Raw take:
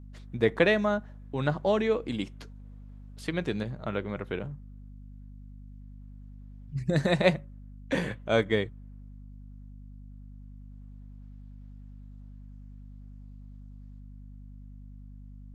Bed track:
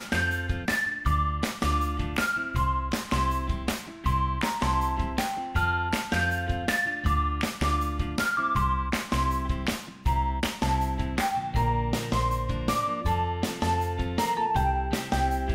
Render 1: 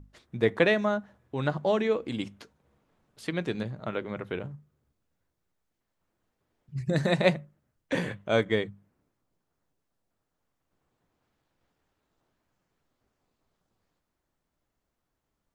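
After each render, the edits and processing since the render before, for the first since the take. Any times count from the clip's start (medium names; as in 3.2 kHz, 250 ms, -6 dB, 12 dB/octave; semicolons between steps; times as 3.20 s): hum notches 50/100/150/200/250 Hz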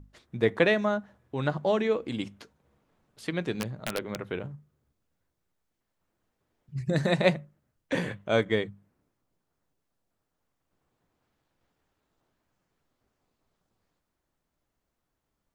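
3.55–4.20 s: integer overflow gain 20.5 dB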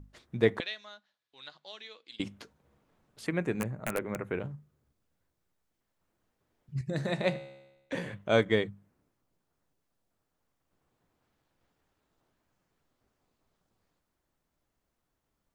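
0.60–2.20 s: band-pass filter 4.1 kHz, Q 2.9; 3.26–4.40 s: high-order bell 4.1 kHz -13.5 dB 1.1 oct; 6.81–8.13 s: feedback comb 68 Hz, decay 1 s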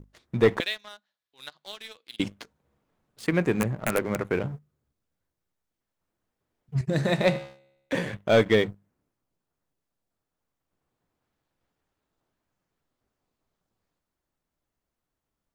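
waveshaping leveller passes 2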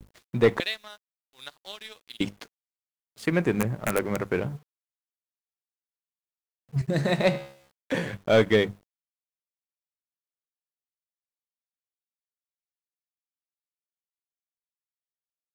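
bit crusher 10-bit; vibrato 0.46 Hz 37 cents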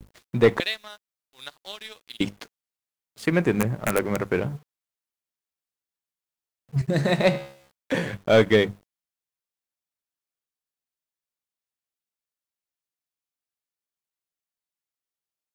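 trim +2.5 dB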